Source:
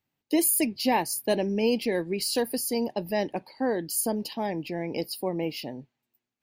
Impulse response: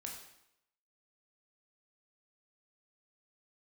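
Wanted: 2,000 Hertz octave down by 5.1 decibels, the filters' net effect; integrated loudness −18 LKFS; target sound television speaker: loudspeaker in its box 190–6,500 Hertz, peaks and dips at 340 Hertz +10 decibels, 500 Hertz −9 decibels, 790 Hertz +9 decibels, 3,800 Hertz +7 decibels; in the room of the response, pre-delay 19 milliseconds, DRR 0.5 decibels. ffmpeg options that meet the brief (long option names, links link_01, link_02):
-filter_complex "[0:a]equalizer=frequency=2000:width_type=o:gain=-7,asplit=2[link_01][link_02];[1:a]atrim=start_sample=2205,adelay=19[link_03];[link_02][link_03]afir=irnorm=-1:irlink=0,volume=2dB[link_04];[link_01][link_04]amix=inputs=2:normalize=0,highpass=frequency=190:width=0.5412,highpass=frequency=190:width=1.3066,equalizer=frequency=340:width_type=q:width=4:gain=10,equalizer=frequency=500:width_type=q:width=4:gain=-9,equalizer=frequency=790:width_type=q:width=4:gain=9,equalizer=frequency=3800:width_type=q:width=4:gain=7,lowpass=frequency=6500:width=0.5412,lowpass=frequency=6500:width=1.3066,volume=6dB"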